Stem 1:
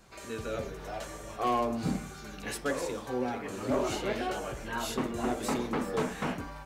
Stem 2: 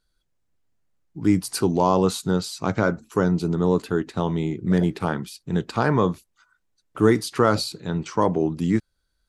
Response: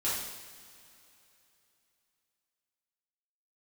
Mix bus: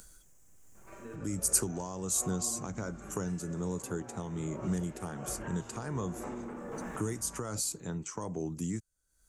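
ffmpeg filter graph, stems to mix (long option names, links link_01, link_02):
-filter_complex "[0:a]lowpass=2000,alimiter=level_in=5.5dB:limit=-24dB:level=0:latency=1:release=23,volume=-5.5dB,adelay=750,volume=-5dB,asplit=3[link_01][link_02][link_03];[link_02]volume=-7dB[link_04];[link_03]volume=-11.5dB[link_05];[1:a]alimiter=limit=-10dB:level=0:latency=1:release=307,acompressor=mode=upward:threshold=-32dB:ratio=2.5,volume=-6.5dB,asplit=2[link_06][link_07];[link_07]apad=whole_len=326418[link_08];[link_01][link_08]sidechaincompress=threshold=-48dB:ratio=8:attack=16:release=115[link_09];[2:a]atrim=start_sample=2205[link_10];[link_04][link_10]afir=irnorm=-1:irlink=0[link_11];[link_05]aecho=0:1:218|436|654|872|1090|1308:1|0.42|0.176|0.0741|0.0311|0.0131[link_12];[link_09][link_06][link_11][link_12]amix=inputs=4:normalize=0,highshelf=frequency=5400:width_type=q:width=3:gain=9,acrossover=split=150|3000[link_13][link_14][link_15];[link_14]acompressor=threshold=-34dB:ratio=4[link_16];[link_13][link_16][link_15]amix=inputs=3:normalize=0,tremolo=f=1.3:d=0.4"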